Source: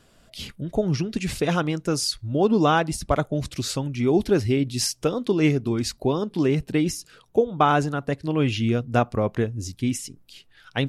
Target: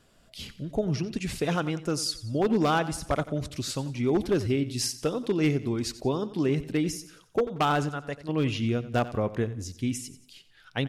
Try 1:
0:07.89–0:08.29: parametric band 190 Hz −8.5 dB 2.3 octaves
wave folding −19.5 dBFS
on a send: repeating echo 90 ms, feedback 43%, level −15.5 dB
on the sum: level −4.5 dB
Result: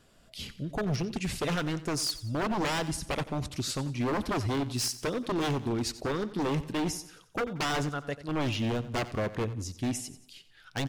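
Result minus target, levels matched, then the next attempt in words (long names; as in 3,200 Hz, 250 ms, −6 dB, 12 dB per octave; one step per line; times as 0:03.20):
wave folding: distortion +17 dB
0:07.89–0:08.29: parametric band 190 Hz −8.5 dB 2.3 octaves
wave folding −12 dBFS
on a send: repeating echo 90 ms, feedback 43%, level −15.5 dB
on the sum: level −4.5 dB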